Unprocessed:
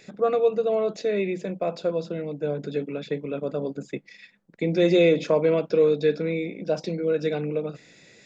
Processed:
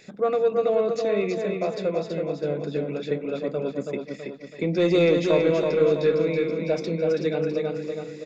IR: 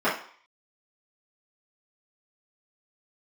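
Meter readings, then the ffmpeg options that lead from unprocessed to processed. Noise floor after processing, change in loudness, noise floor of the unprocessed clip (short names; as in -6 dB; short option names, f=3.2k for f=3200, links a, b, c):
-41 dBFS, +0.5 dB, -54 dBFS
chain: -af "asoftclip=type=tanh:threshold=-11dB,aecho=1:1:327|654|981|1308|1635|1962:0.596|0.286|0.137|0.0659|0.0316|0.0152"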